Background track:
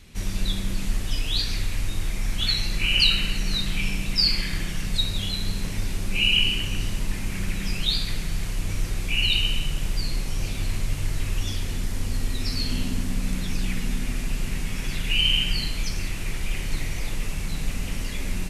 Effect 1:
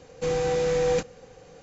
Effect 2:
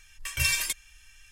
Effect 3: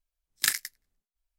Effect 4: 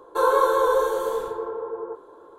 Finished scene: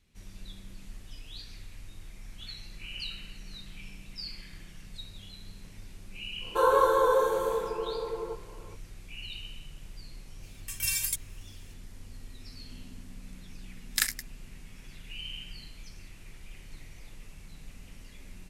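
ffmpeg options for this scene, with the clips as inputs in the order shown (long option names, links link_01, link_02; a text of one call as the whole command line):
ffmpeg -i bed.wav -i cue0.wav -i cue1.wav -i cue2.wav -i cue3.wav -filter_complex "[0:a]volume=-19.5dB[link_01];[2:a]aemphasis=mode=production:type=75fm[link_02];[4:a]atrim=end=2.38,asetpts=PTS-STARTPTS,volume=-3.5dB,afade=type=in:duration=0.05,afade=type=out:start_time=2.33:duration=0.05,adelay=6400[link_03];[link_02]atrim=end=1.31,asetpts=PTS-STARTPTS,volume=-13dB,afade=type=in:duration=0.004:curve=hsin,afade=type=out:start_time=1.306:duration=0.004:curve=hsin,adelay=10430[link_04];[3:a]atrim=end=1.38,asetpts=PTS-STARTPTS,volume=-2dB,afade=type=in:duration=0.004:curve=hsin,afade=type=out:start_time=1.376:duration=0.004:curve=hsin,adelay=13540[link_05];[link_01][link_03][link_04][link_05]amix=inputs=4:normalize=0" out.wav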